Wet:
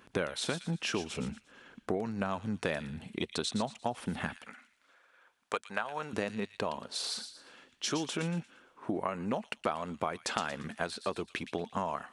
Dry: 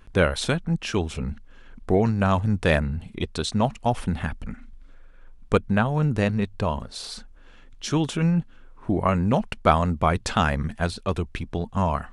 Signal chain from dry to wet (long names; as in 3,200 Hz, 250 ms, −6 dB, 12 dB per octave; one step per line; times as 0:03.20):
high-pass filter 200 Hz 12 dB per octave, from 0:04.37 730 Hz, from 0:06.13 280 Hz
downward compressor 6 to 1, threshold −30 dBFS, peak gain reduction 17 dB
delay with a high-pass on its return 116 ms, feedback 35%, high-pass 2,900 Hz, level −7.5 dB